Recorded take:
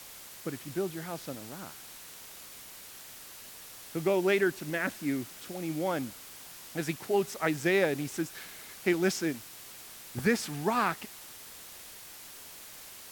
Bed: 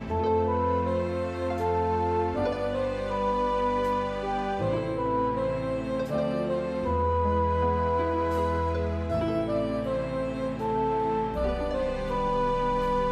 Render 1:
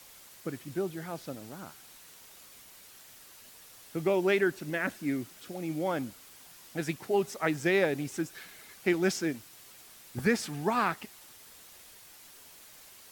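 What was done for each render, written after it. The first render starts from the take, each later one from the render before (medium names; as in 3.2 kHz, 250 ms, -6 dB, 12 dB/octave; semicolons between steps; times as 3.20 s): noise reduction 6 dB, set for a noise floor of -48 dBFS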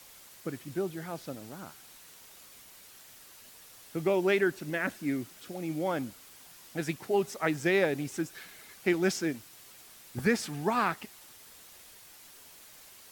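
no audible change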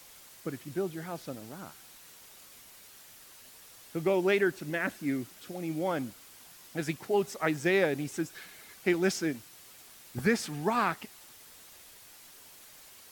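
wow and flutter 22 cents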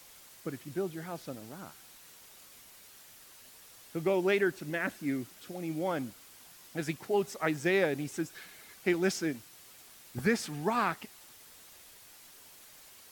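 trim -1.5 dB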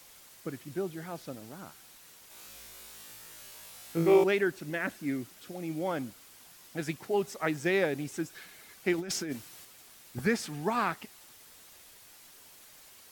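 2.28–4.24 s: flutter echo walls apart 3.1 m, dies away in 0.75 s; 8.98–9.65 s: compressor with a negative ratio -35 dBFS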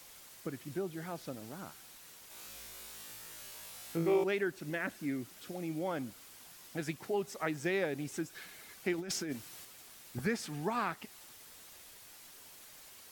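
compression 1.5:1, threshold -39 dBFS, peak gain reduction 8 dB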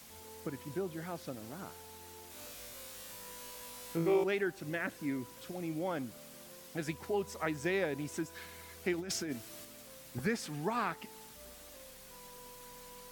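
add bed -29 dB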